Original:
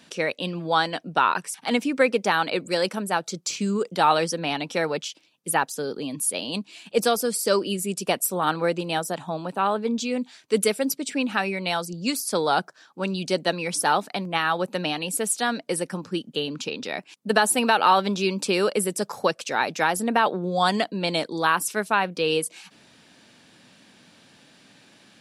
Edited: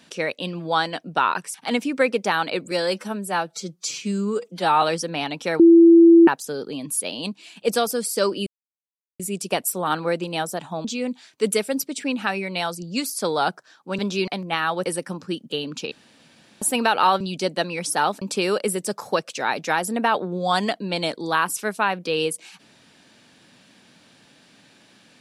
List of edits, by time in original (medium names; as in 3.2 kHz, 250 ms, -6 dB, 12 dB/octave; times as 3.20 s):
2.71–4.12 s: stretch 1.5×
4.89–5.57 s: bleep 335 Hz -7 dBFS
7.76 s: insert silence 0.73 s
9.41–9.95 s: delete
13.09–14.10 s: swap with 18.04–18.33 s
14.68–15.69 s: delete
16.75–17.45 s: room tone